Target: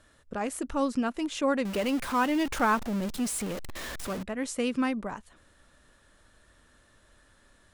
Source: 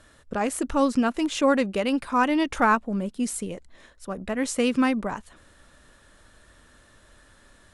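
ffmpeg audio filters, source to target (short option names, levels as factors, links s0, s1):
-filter_complex "[0:a]asettb=1/sr,asplit=3[s0][s1][s2];[s0]atrim=end=1.654[s3];[s1]atrim=start=1.65:end=4.23,asetpts=PTS-STARTPTS,afade=t=in:d=0.004:c=qsin,afade=t=out:st=2.576:d=0.004:c=qsin,aeval=exprs='val(0)+0.5*0.0501*sgn(val(0))':c=same[s4];[s2]atrim=start=4.226[s5];[s3][s4]acrossfade=d=0.004:c1=hsin:c2=qsin[s6];[s6][s5]acrossfade=d=0.004:c1=qsin:c2=hsin,volume=0.501"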